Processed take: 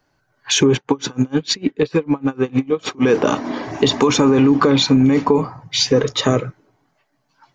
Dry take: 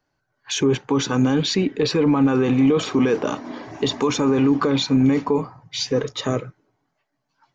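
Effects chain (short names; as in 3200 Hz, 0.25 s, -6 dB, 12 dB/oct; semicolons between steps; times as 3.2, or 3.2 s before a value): compressor, threshold -18 dBFS, peak gain reduction 6 dB; 0.76–3.04 dB-linear tremolo 6.6 Hz, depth 31 dB; gain +8.5 dB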